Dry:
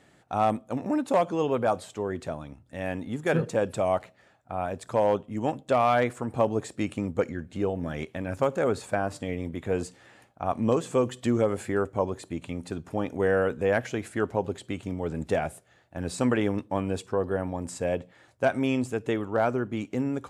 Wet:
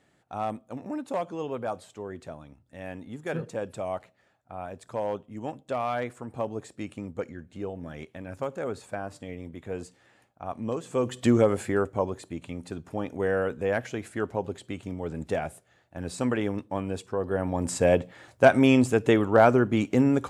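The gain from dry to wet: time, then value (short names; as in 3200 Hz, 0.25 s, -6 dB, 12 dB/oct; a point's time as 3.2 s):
10.82 s -7 dB
11.25 s +4.5 dB
12.34 s -2.5 dB
17.18 s -2.5 dB
17.71 s +7 dB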